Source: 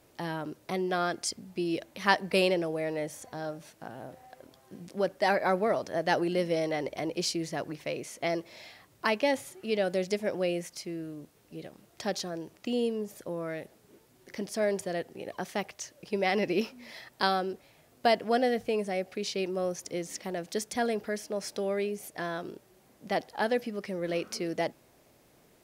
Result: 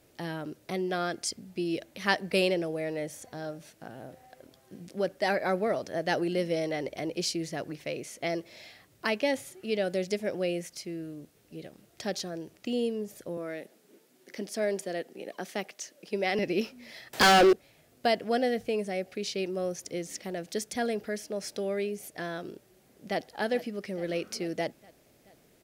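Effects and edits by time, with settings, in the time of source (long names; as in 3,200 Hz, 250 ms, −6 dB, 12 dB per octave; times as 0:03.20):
0:13.37–0:16.39: high-pass filter 190 Hz 24 dB per octave
0:17.13–0:17.53: mid-hump overdrive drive 34 dB, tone 4,800 Hz, clips at −10 dBFS
0:22.53–0:23.22: delay throw 430 ms, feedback 65%, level −14.5 dB
whole clip: parametric band 990 Hz −6.5 dB 0.68 octaves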